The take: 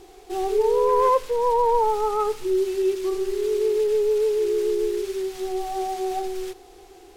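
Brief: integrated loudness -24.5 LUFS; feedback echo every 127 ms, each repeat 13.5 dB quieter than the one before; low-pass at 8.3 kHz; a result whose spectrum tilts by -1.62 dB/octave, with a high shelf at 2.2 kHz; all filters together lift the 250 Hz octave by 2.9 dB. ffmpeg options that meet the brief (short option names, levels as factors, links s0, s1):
-af "lowpass=8300,equalizer=f=250:t=o:g=7,highshelf=f=2200:g=-3.5,aecho=1:1:127|254:0.211|0.0444,volume=0.708"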